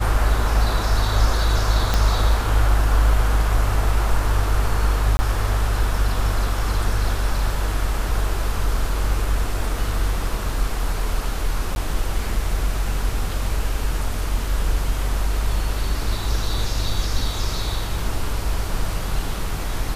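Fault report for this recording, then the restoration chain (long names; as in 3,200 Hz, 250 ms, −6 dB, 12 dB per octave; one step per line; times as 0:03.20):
0:01.94: click −5 dBFS
0:05.17–0:05.19: drop-out 20 ms
0:11.75–0:11.76: drop-out 11 ms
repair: click removal
repair the gap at 0:05.17, 20 ms
repair the gap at 0:11.75, 11 ms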